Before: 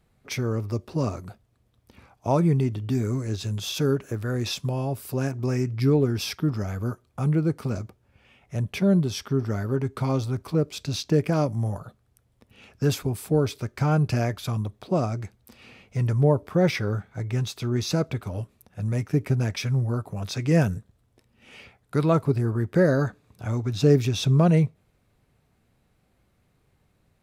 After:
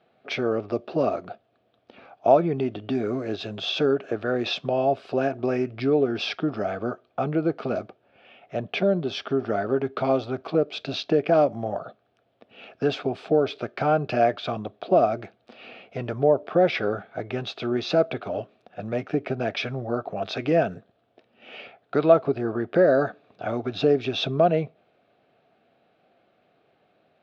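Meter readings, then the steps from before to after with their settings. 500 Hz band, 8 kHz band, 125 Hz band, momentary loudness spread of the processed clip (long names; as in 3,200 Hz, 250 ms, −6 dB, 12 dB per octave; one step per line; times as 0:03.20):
+5.0 dB, below −10 dB, −10.5 dB, 12 LU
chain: downward compressor 3 to 1, threshold −22 dBFS, peak gain reduction 7.5 dB
loudspeaker in its box 340–3,500 Hz, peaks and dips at 680 Hz +9 dB, 980 Hz −9 dB, 2,000 Hz −7 dB
level +8 dB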